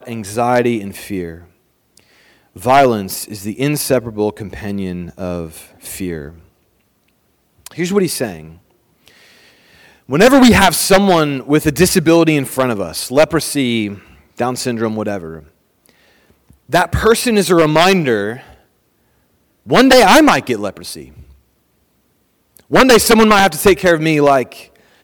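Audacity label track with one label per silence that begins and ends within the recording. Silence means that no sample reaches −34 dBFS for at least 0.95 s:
6.370000	7.660000	silence
18.520000	19.660000	silence
21.230000	22.570000	silence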